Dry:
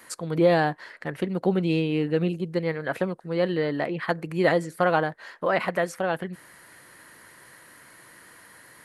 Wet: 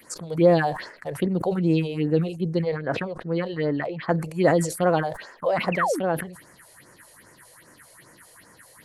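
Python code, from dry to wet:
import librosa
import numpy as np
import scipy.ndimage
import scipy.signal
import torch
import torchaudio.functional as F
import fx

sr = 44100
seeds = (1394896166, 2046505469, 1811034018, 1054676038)

y = fx.lowpass(x, sr, hz=4900.0, slope=12, at=(2.62, 4.12))
y = fx.spec_paint(y, sr, seeds[0], shape='fall', start_s=5.72, length_s=0.28, low_hz=250.0, high_hz=2900.0, level_db=-25.0)
y = fx.phaser_stages(y, sr, stages=4, low_hz=220.0, high_hz=3600.0, hz=2.5, feedback_pct=40)
y = fx.sustainer(y, sr, db_per_s=94.0)
y = y * librosa.db_to_amplitude(2.0)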